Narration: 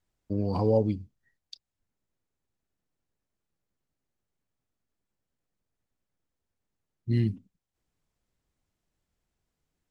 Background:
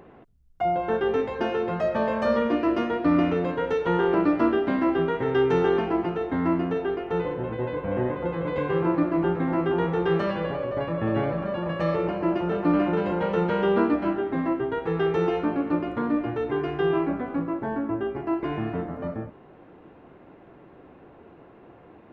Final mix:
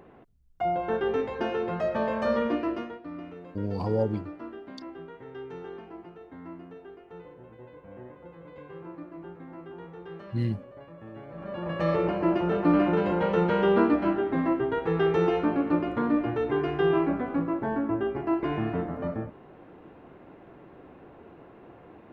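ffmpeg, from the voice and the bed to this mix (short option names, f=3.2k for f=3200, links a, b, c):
-filter_complex "[0:a]adelay=3250,volume=-2.5dB[a];[1:a]volume=16dB,afade=t=out:st=2.49:d=0.52:silence=0.158489,afade=t=in:st=11.28:d=0.66:silence=0.112202[b];[a][b]amix=inputs=2:normalize=0"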